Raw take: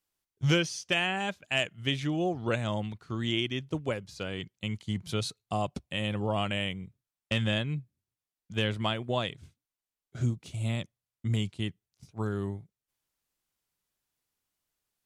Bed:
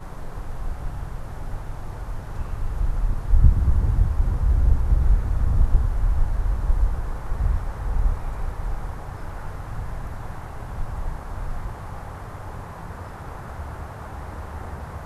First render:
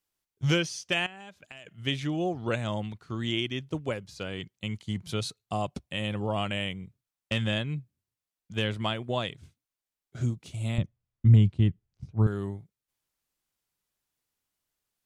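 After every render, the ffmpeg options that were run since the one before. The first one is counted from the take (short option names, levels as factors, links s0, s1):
-filter_complex "[0:a]asettb=1/sr,asplit=3[s0][s1][s2];[s0]atrim=end=1.064[s3];[s1]atrim=start=1.06:end=1.67,asetpts=PTS-STARTPTS,afade=t=in:d=0.004:c=qsin,afade=t=out:st=0.606:d=0.004:c=qsin,acompressor=threshold=0.00794:ratio=12:attack=3.2:release=140:knee=1:detection=peak[s4];[s2]atrim=start=1.666[s5];[s3][s4]acrossfade=d=0.004:c1=hsin:c2=qsin[s6];[s6][s5]acrossfade=d=0.004:c1=qsin:c2=hsin,asettb=1/sr,asplit=3[s7][s8][s9];[s7]atrim=end=10.784[s10];[s8]atrim=start=10.78:end=12.27,asetpts=PTS-STARTPTS,afade=t=in:d=0.004:c=qsin,afade=t=out:st=1.486:d=0.004:c=qsin,aemphasis=mode=reproduction:type=riaa[s11];[s9]atrim=start=12.266[s12];[s10][s11]acrossfade=d=0.004:c1=hsin:c2=qsin[s13];[s13][s12]acrossfade=d=0.004:c1=qsin:c2=hsin"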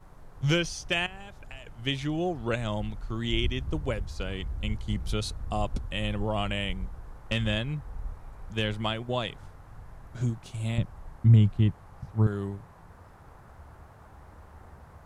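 -filter_complex "[1:a]volume=0.168[s0];[0:a][s0]amix=inputs=2:normalize=0"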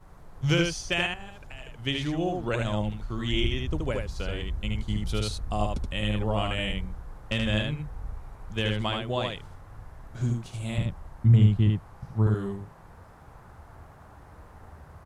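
-af "aecho=1:1:76:0.668"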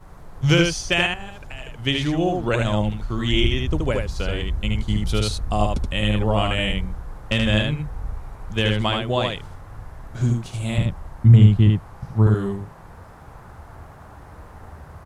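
-af "volume=2.24"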